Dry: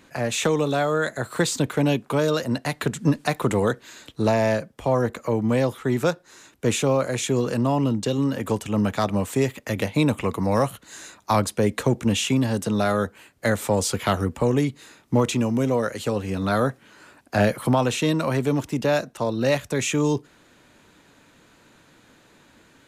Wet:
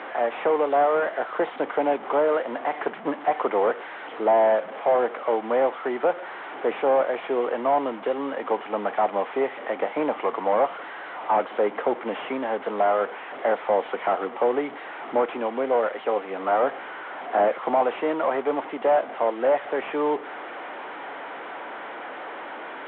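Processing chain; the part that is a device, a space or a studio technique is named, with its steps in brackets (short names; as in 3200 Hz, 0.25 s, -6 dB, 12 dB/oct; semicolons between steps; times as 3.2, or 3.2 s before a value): digital answering machine (BPF 350–3000 Hz; delta modulation 16 kbps, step -32.5 dBFS; speaker cabinet 400–3400 Hz, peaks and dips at 760 Hz +6 dB, 1700 Hz -3 dB, 2600 Hz -9 dB); gain +4 dB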